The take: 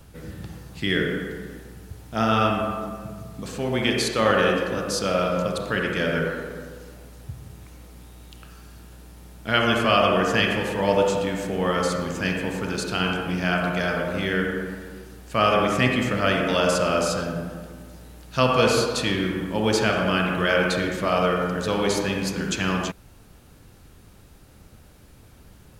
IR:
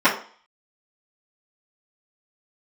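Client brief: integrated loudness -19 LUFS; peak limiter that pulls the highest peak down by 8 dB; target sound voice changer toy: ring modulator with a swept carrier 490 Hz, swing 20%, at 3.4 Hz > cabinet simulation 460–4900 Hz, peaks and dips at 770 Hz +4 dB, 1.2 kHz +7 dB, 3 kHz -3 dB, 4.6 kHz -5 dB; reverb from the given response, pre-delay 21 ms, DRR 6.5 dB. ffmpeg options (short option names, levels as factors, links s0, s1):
-filter_complex "[0:a]alimiter=limit=0.266:level=0:latency=1,asplit=2[s0][s1];[1:a]atrim=start_sample=2205,adelay=21[s2];[s1][s2]afir=irnorm=-1:irlink=0,volume=0.0376[s3];[s0][s3]amix=inputs=2:normalize=0,aeval=exprs='val(0)*sin(2*PI*490*n/s+490*0.2/3.4*sin(2*PI*3.4*n/s))':c=same,highpass=460,equalizer=f=770:t=q:w=4:g=4,equalizer=f=1200:t=q:w=4:g=7,equalizer=f=3000:t=q:w=4:g=-3,equalizer=f=4600:t=q:w=4:g=-5,lowpass=f=4900:w=0.5412,lowpass=f=4900:w=1.3066,volume=2.24"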